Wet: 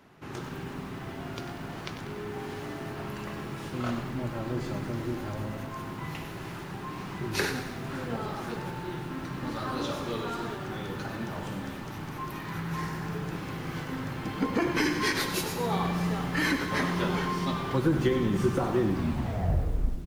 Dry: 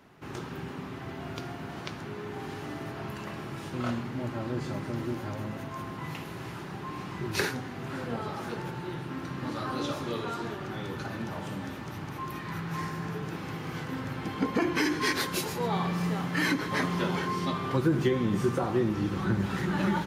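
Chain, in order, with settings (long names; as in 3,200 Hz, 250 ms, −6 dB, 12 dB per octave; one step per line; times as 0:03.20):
turntable brake at the end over 1.27 s
echo with shifted repeats 115 ms, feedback 55%, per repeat −100 Hz, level −14.5 dB
feedback echo at a low word length 96 ms, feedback 55%, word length 8 bits, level −10 dB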